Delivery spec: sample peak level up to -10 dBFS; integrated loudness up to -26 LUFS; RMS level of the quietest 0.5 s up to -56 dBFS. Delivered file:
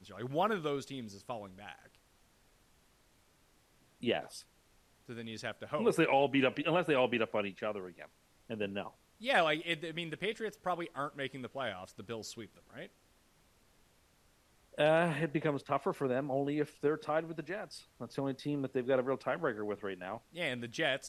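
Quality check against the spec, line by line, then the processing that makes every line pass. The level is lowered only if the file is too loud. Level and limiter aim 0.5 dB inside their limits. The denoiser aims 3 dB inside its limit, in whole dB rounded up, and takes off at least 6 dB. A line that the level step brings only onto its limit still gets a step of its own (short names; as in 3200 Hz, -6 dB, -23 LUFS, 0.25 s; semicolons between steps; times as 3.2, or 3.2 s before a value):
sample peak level -15.5 dBFS: OK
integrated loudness -35.0 LUFS: OK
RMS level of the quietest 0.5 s -68 dBFS: OK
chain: none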